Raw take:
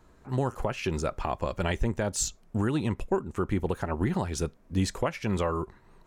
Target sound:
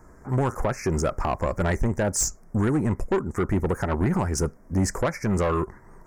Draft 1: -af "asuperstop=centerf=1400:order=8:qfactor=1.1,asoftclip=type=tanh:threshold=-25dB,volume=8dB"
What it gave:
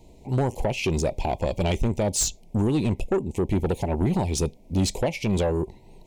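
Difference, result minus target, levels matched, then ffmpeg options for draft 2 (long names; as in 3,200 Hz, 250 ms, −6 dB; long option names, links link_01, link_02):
4,000 Hz band +6.5 dB
-af "asuperstop=centerf=3300:order=8:qfactor=1.1,asoftclip=type=tanh:threshold=-25dB,volume=8dB"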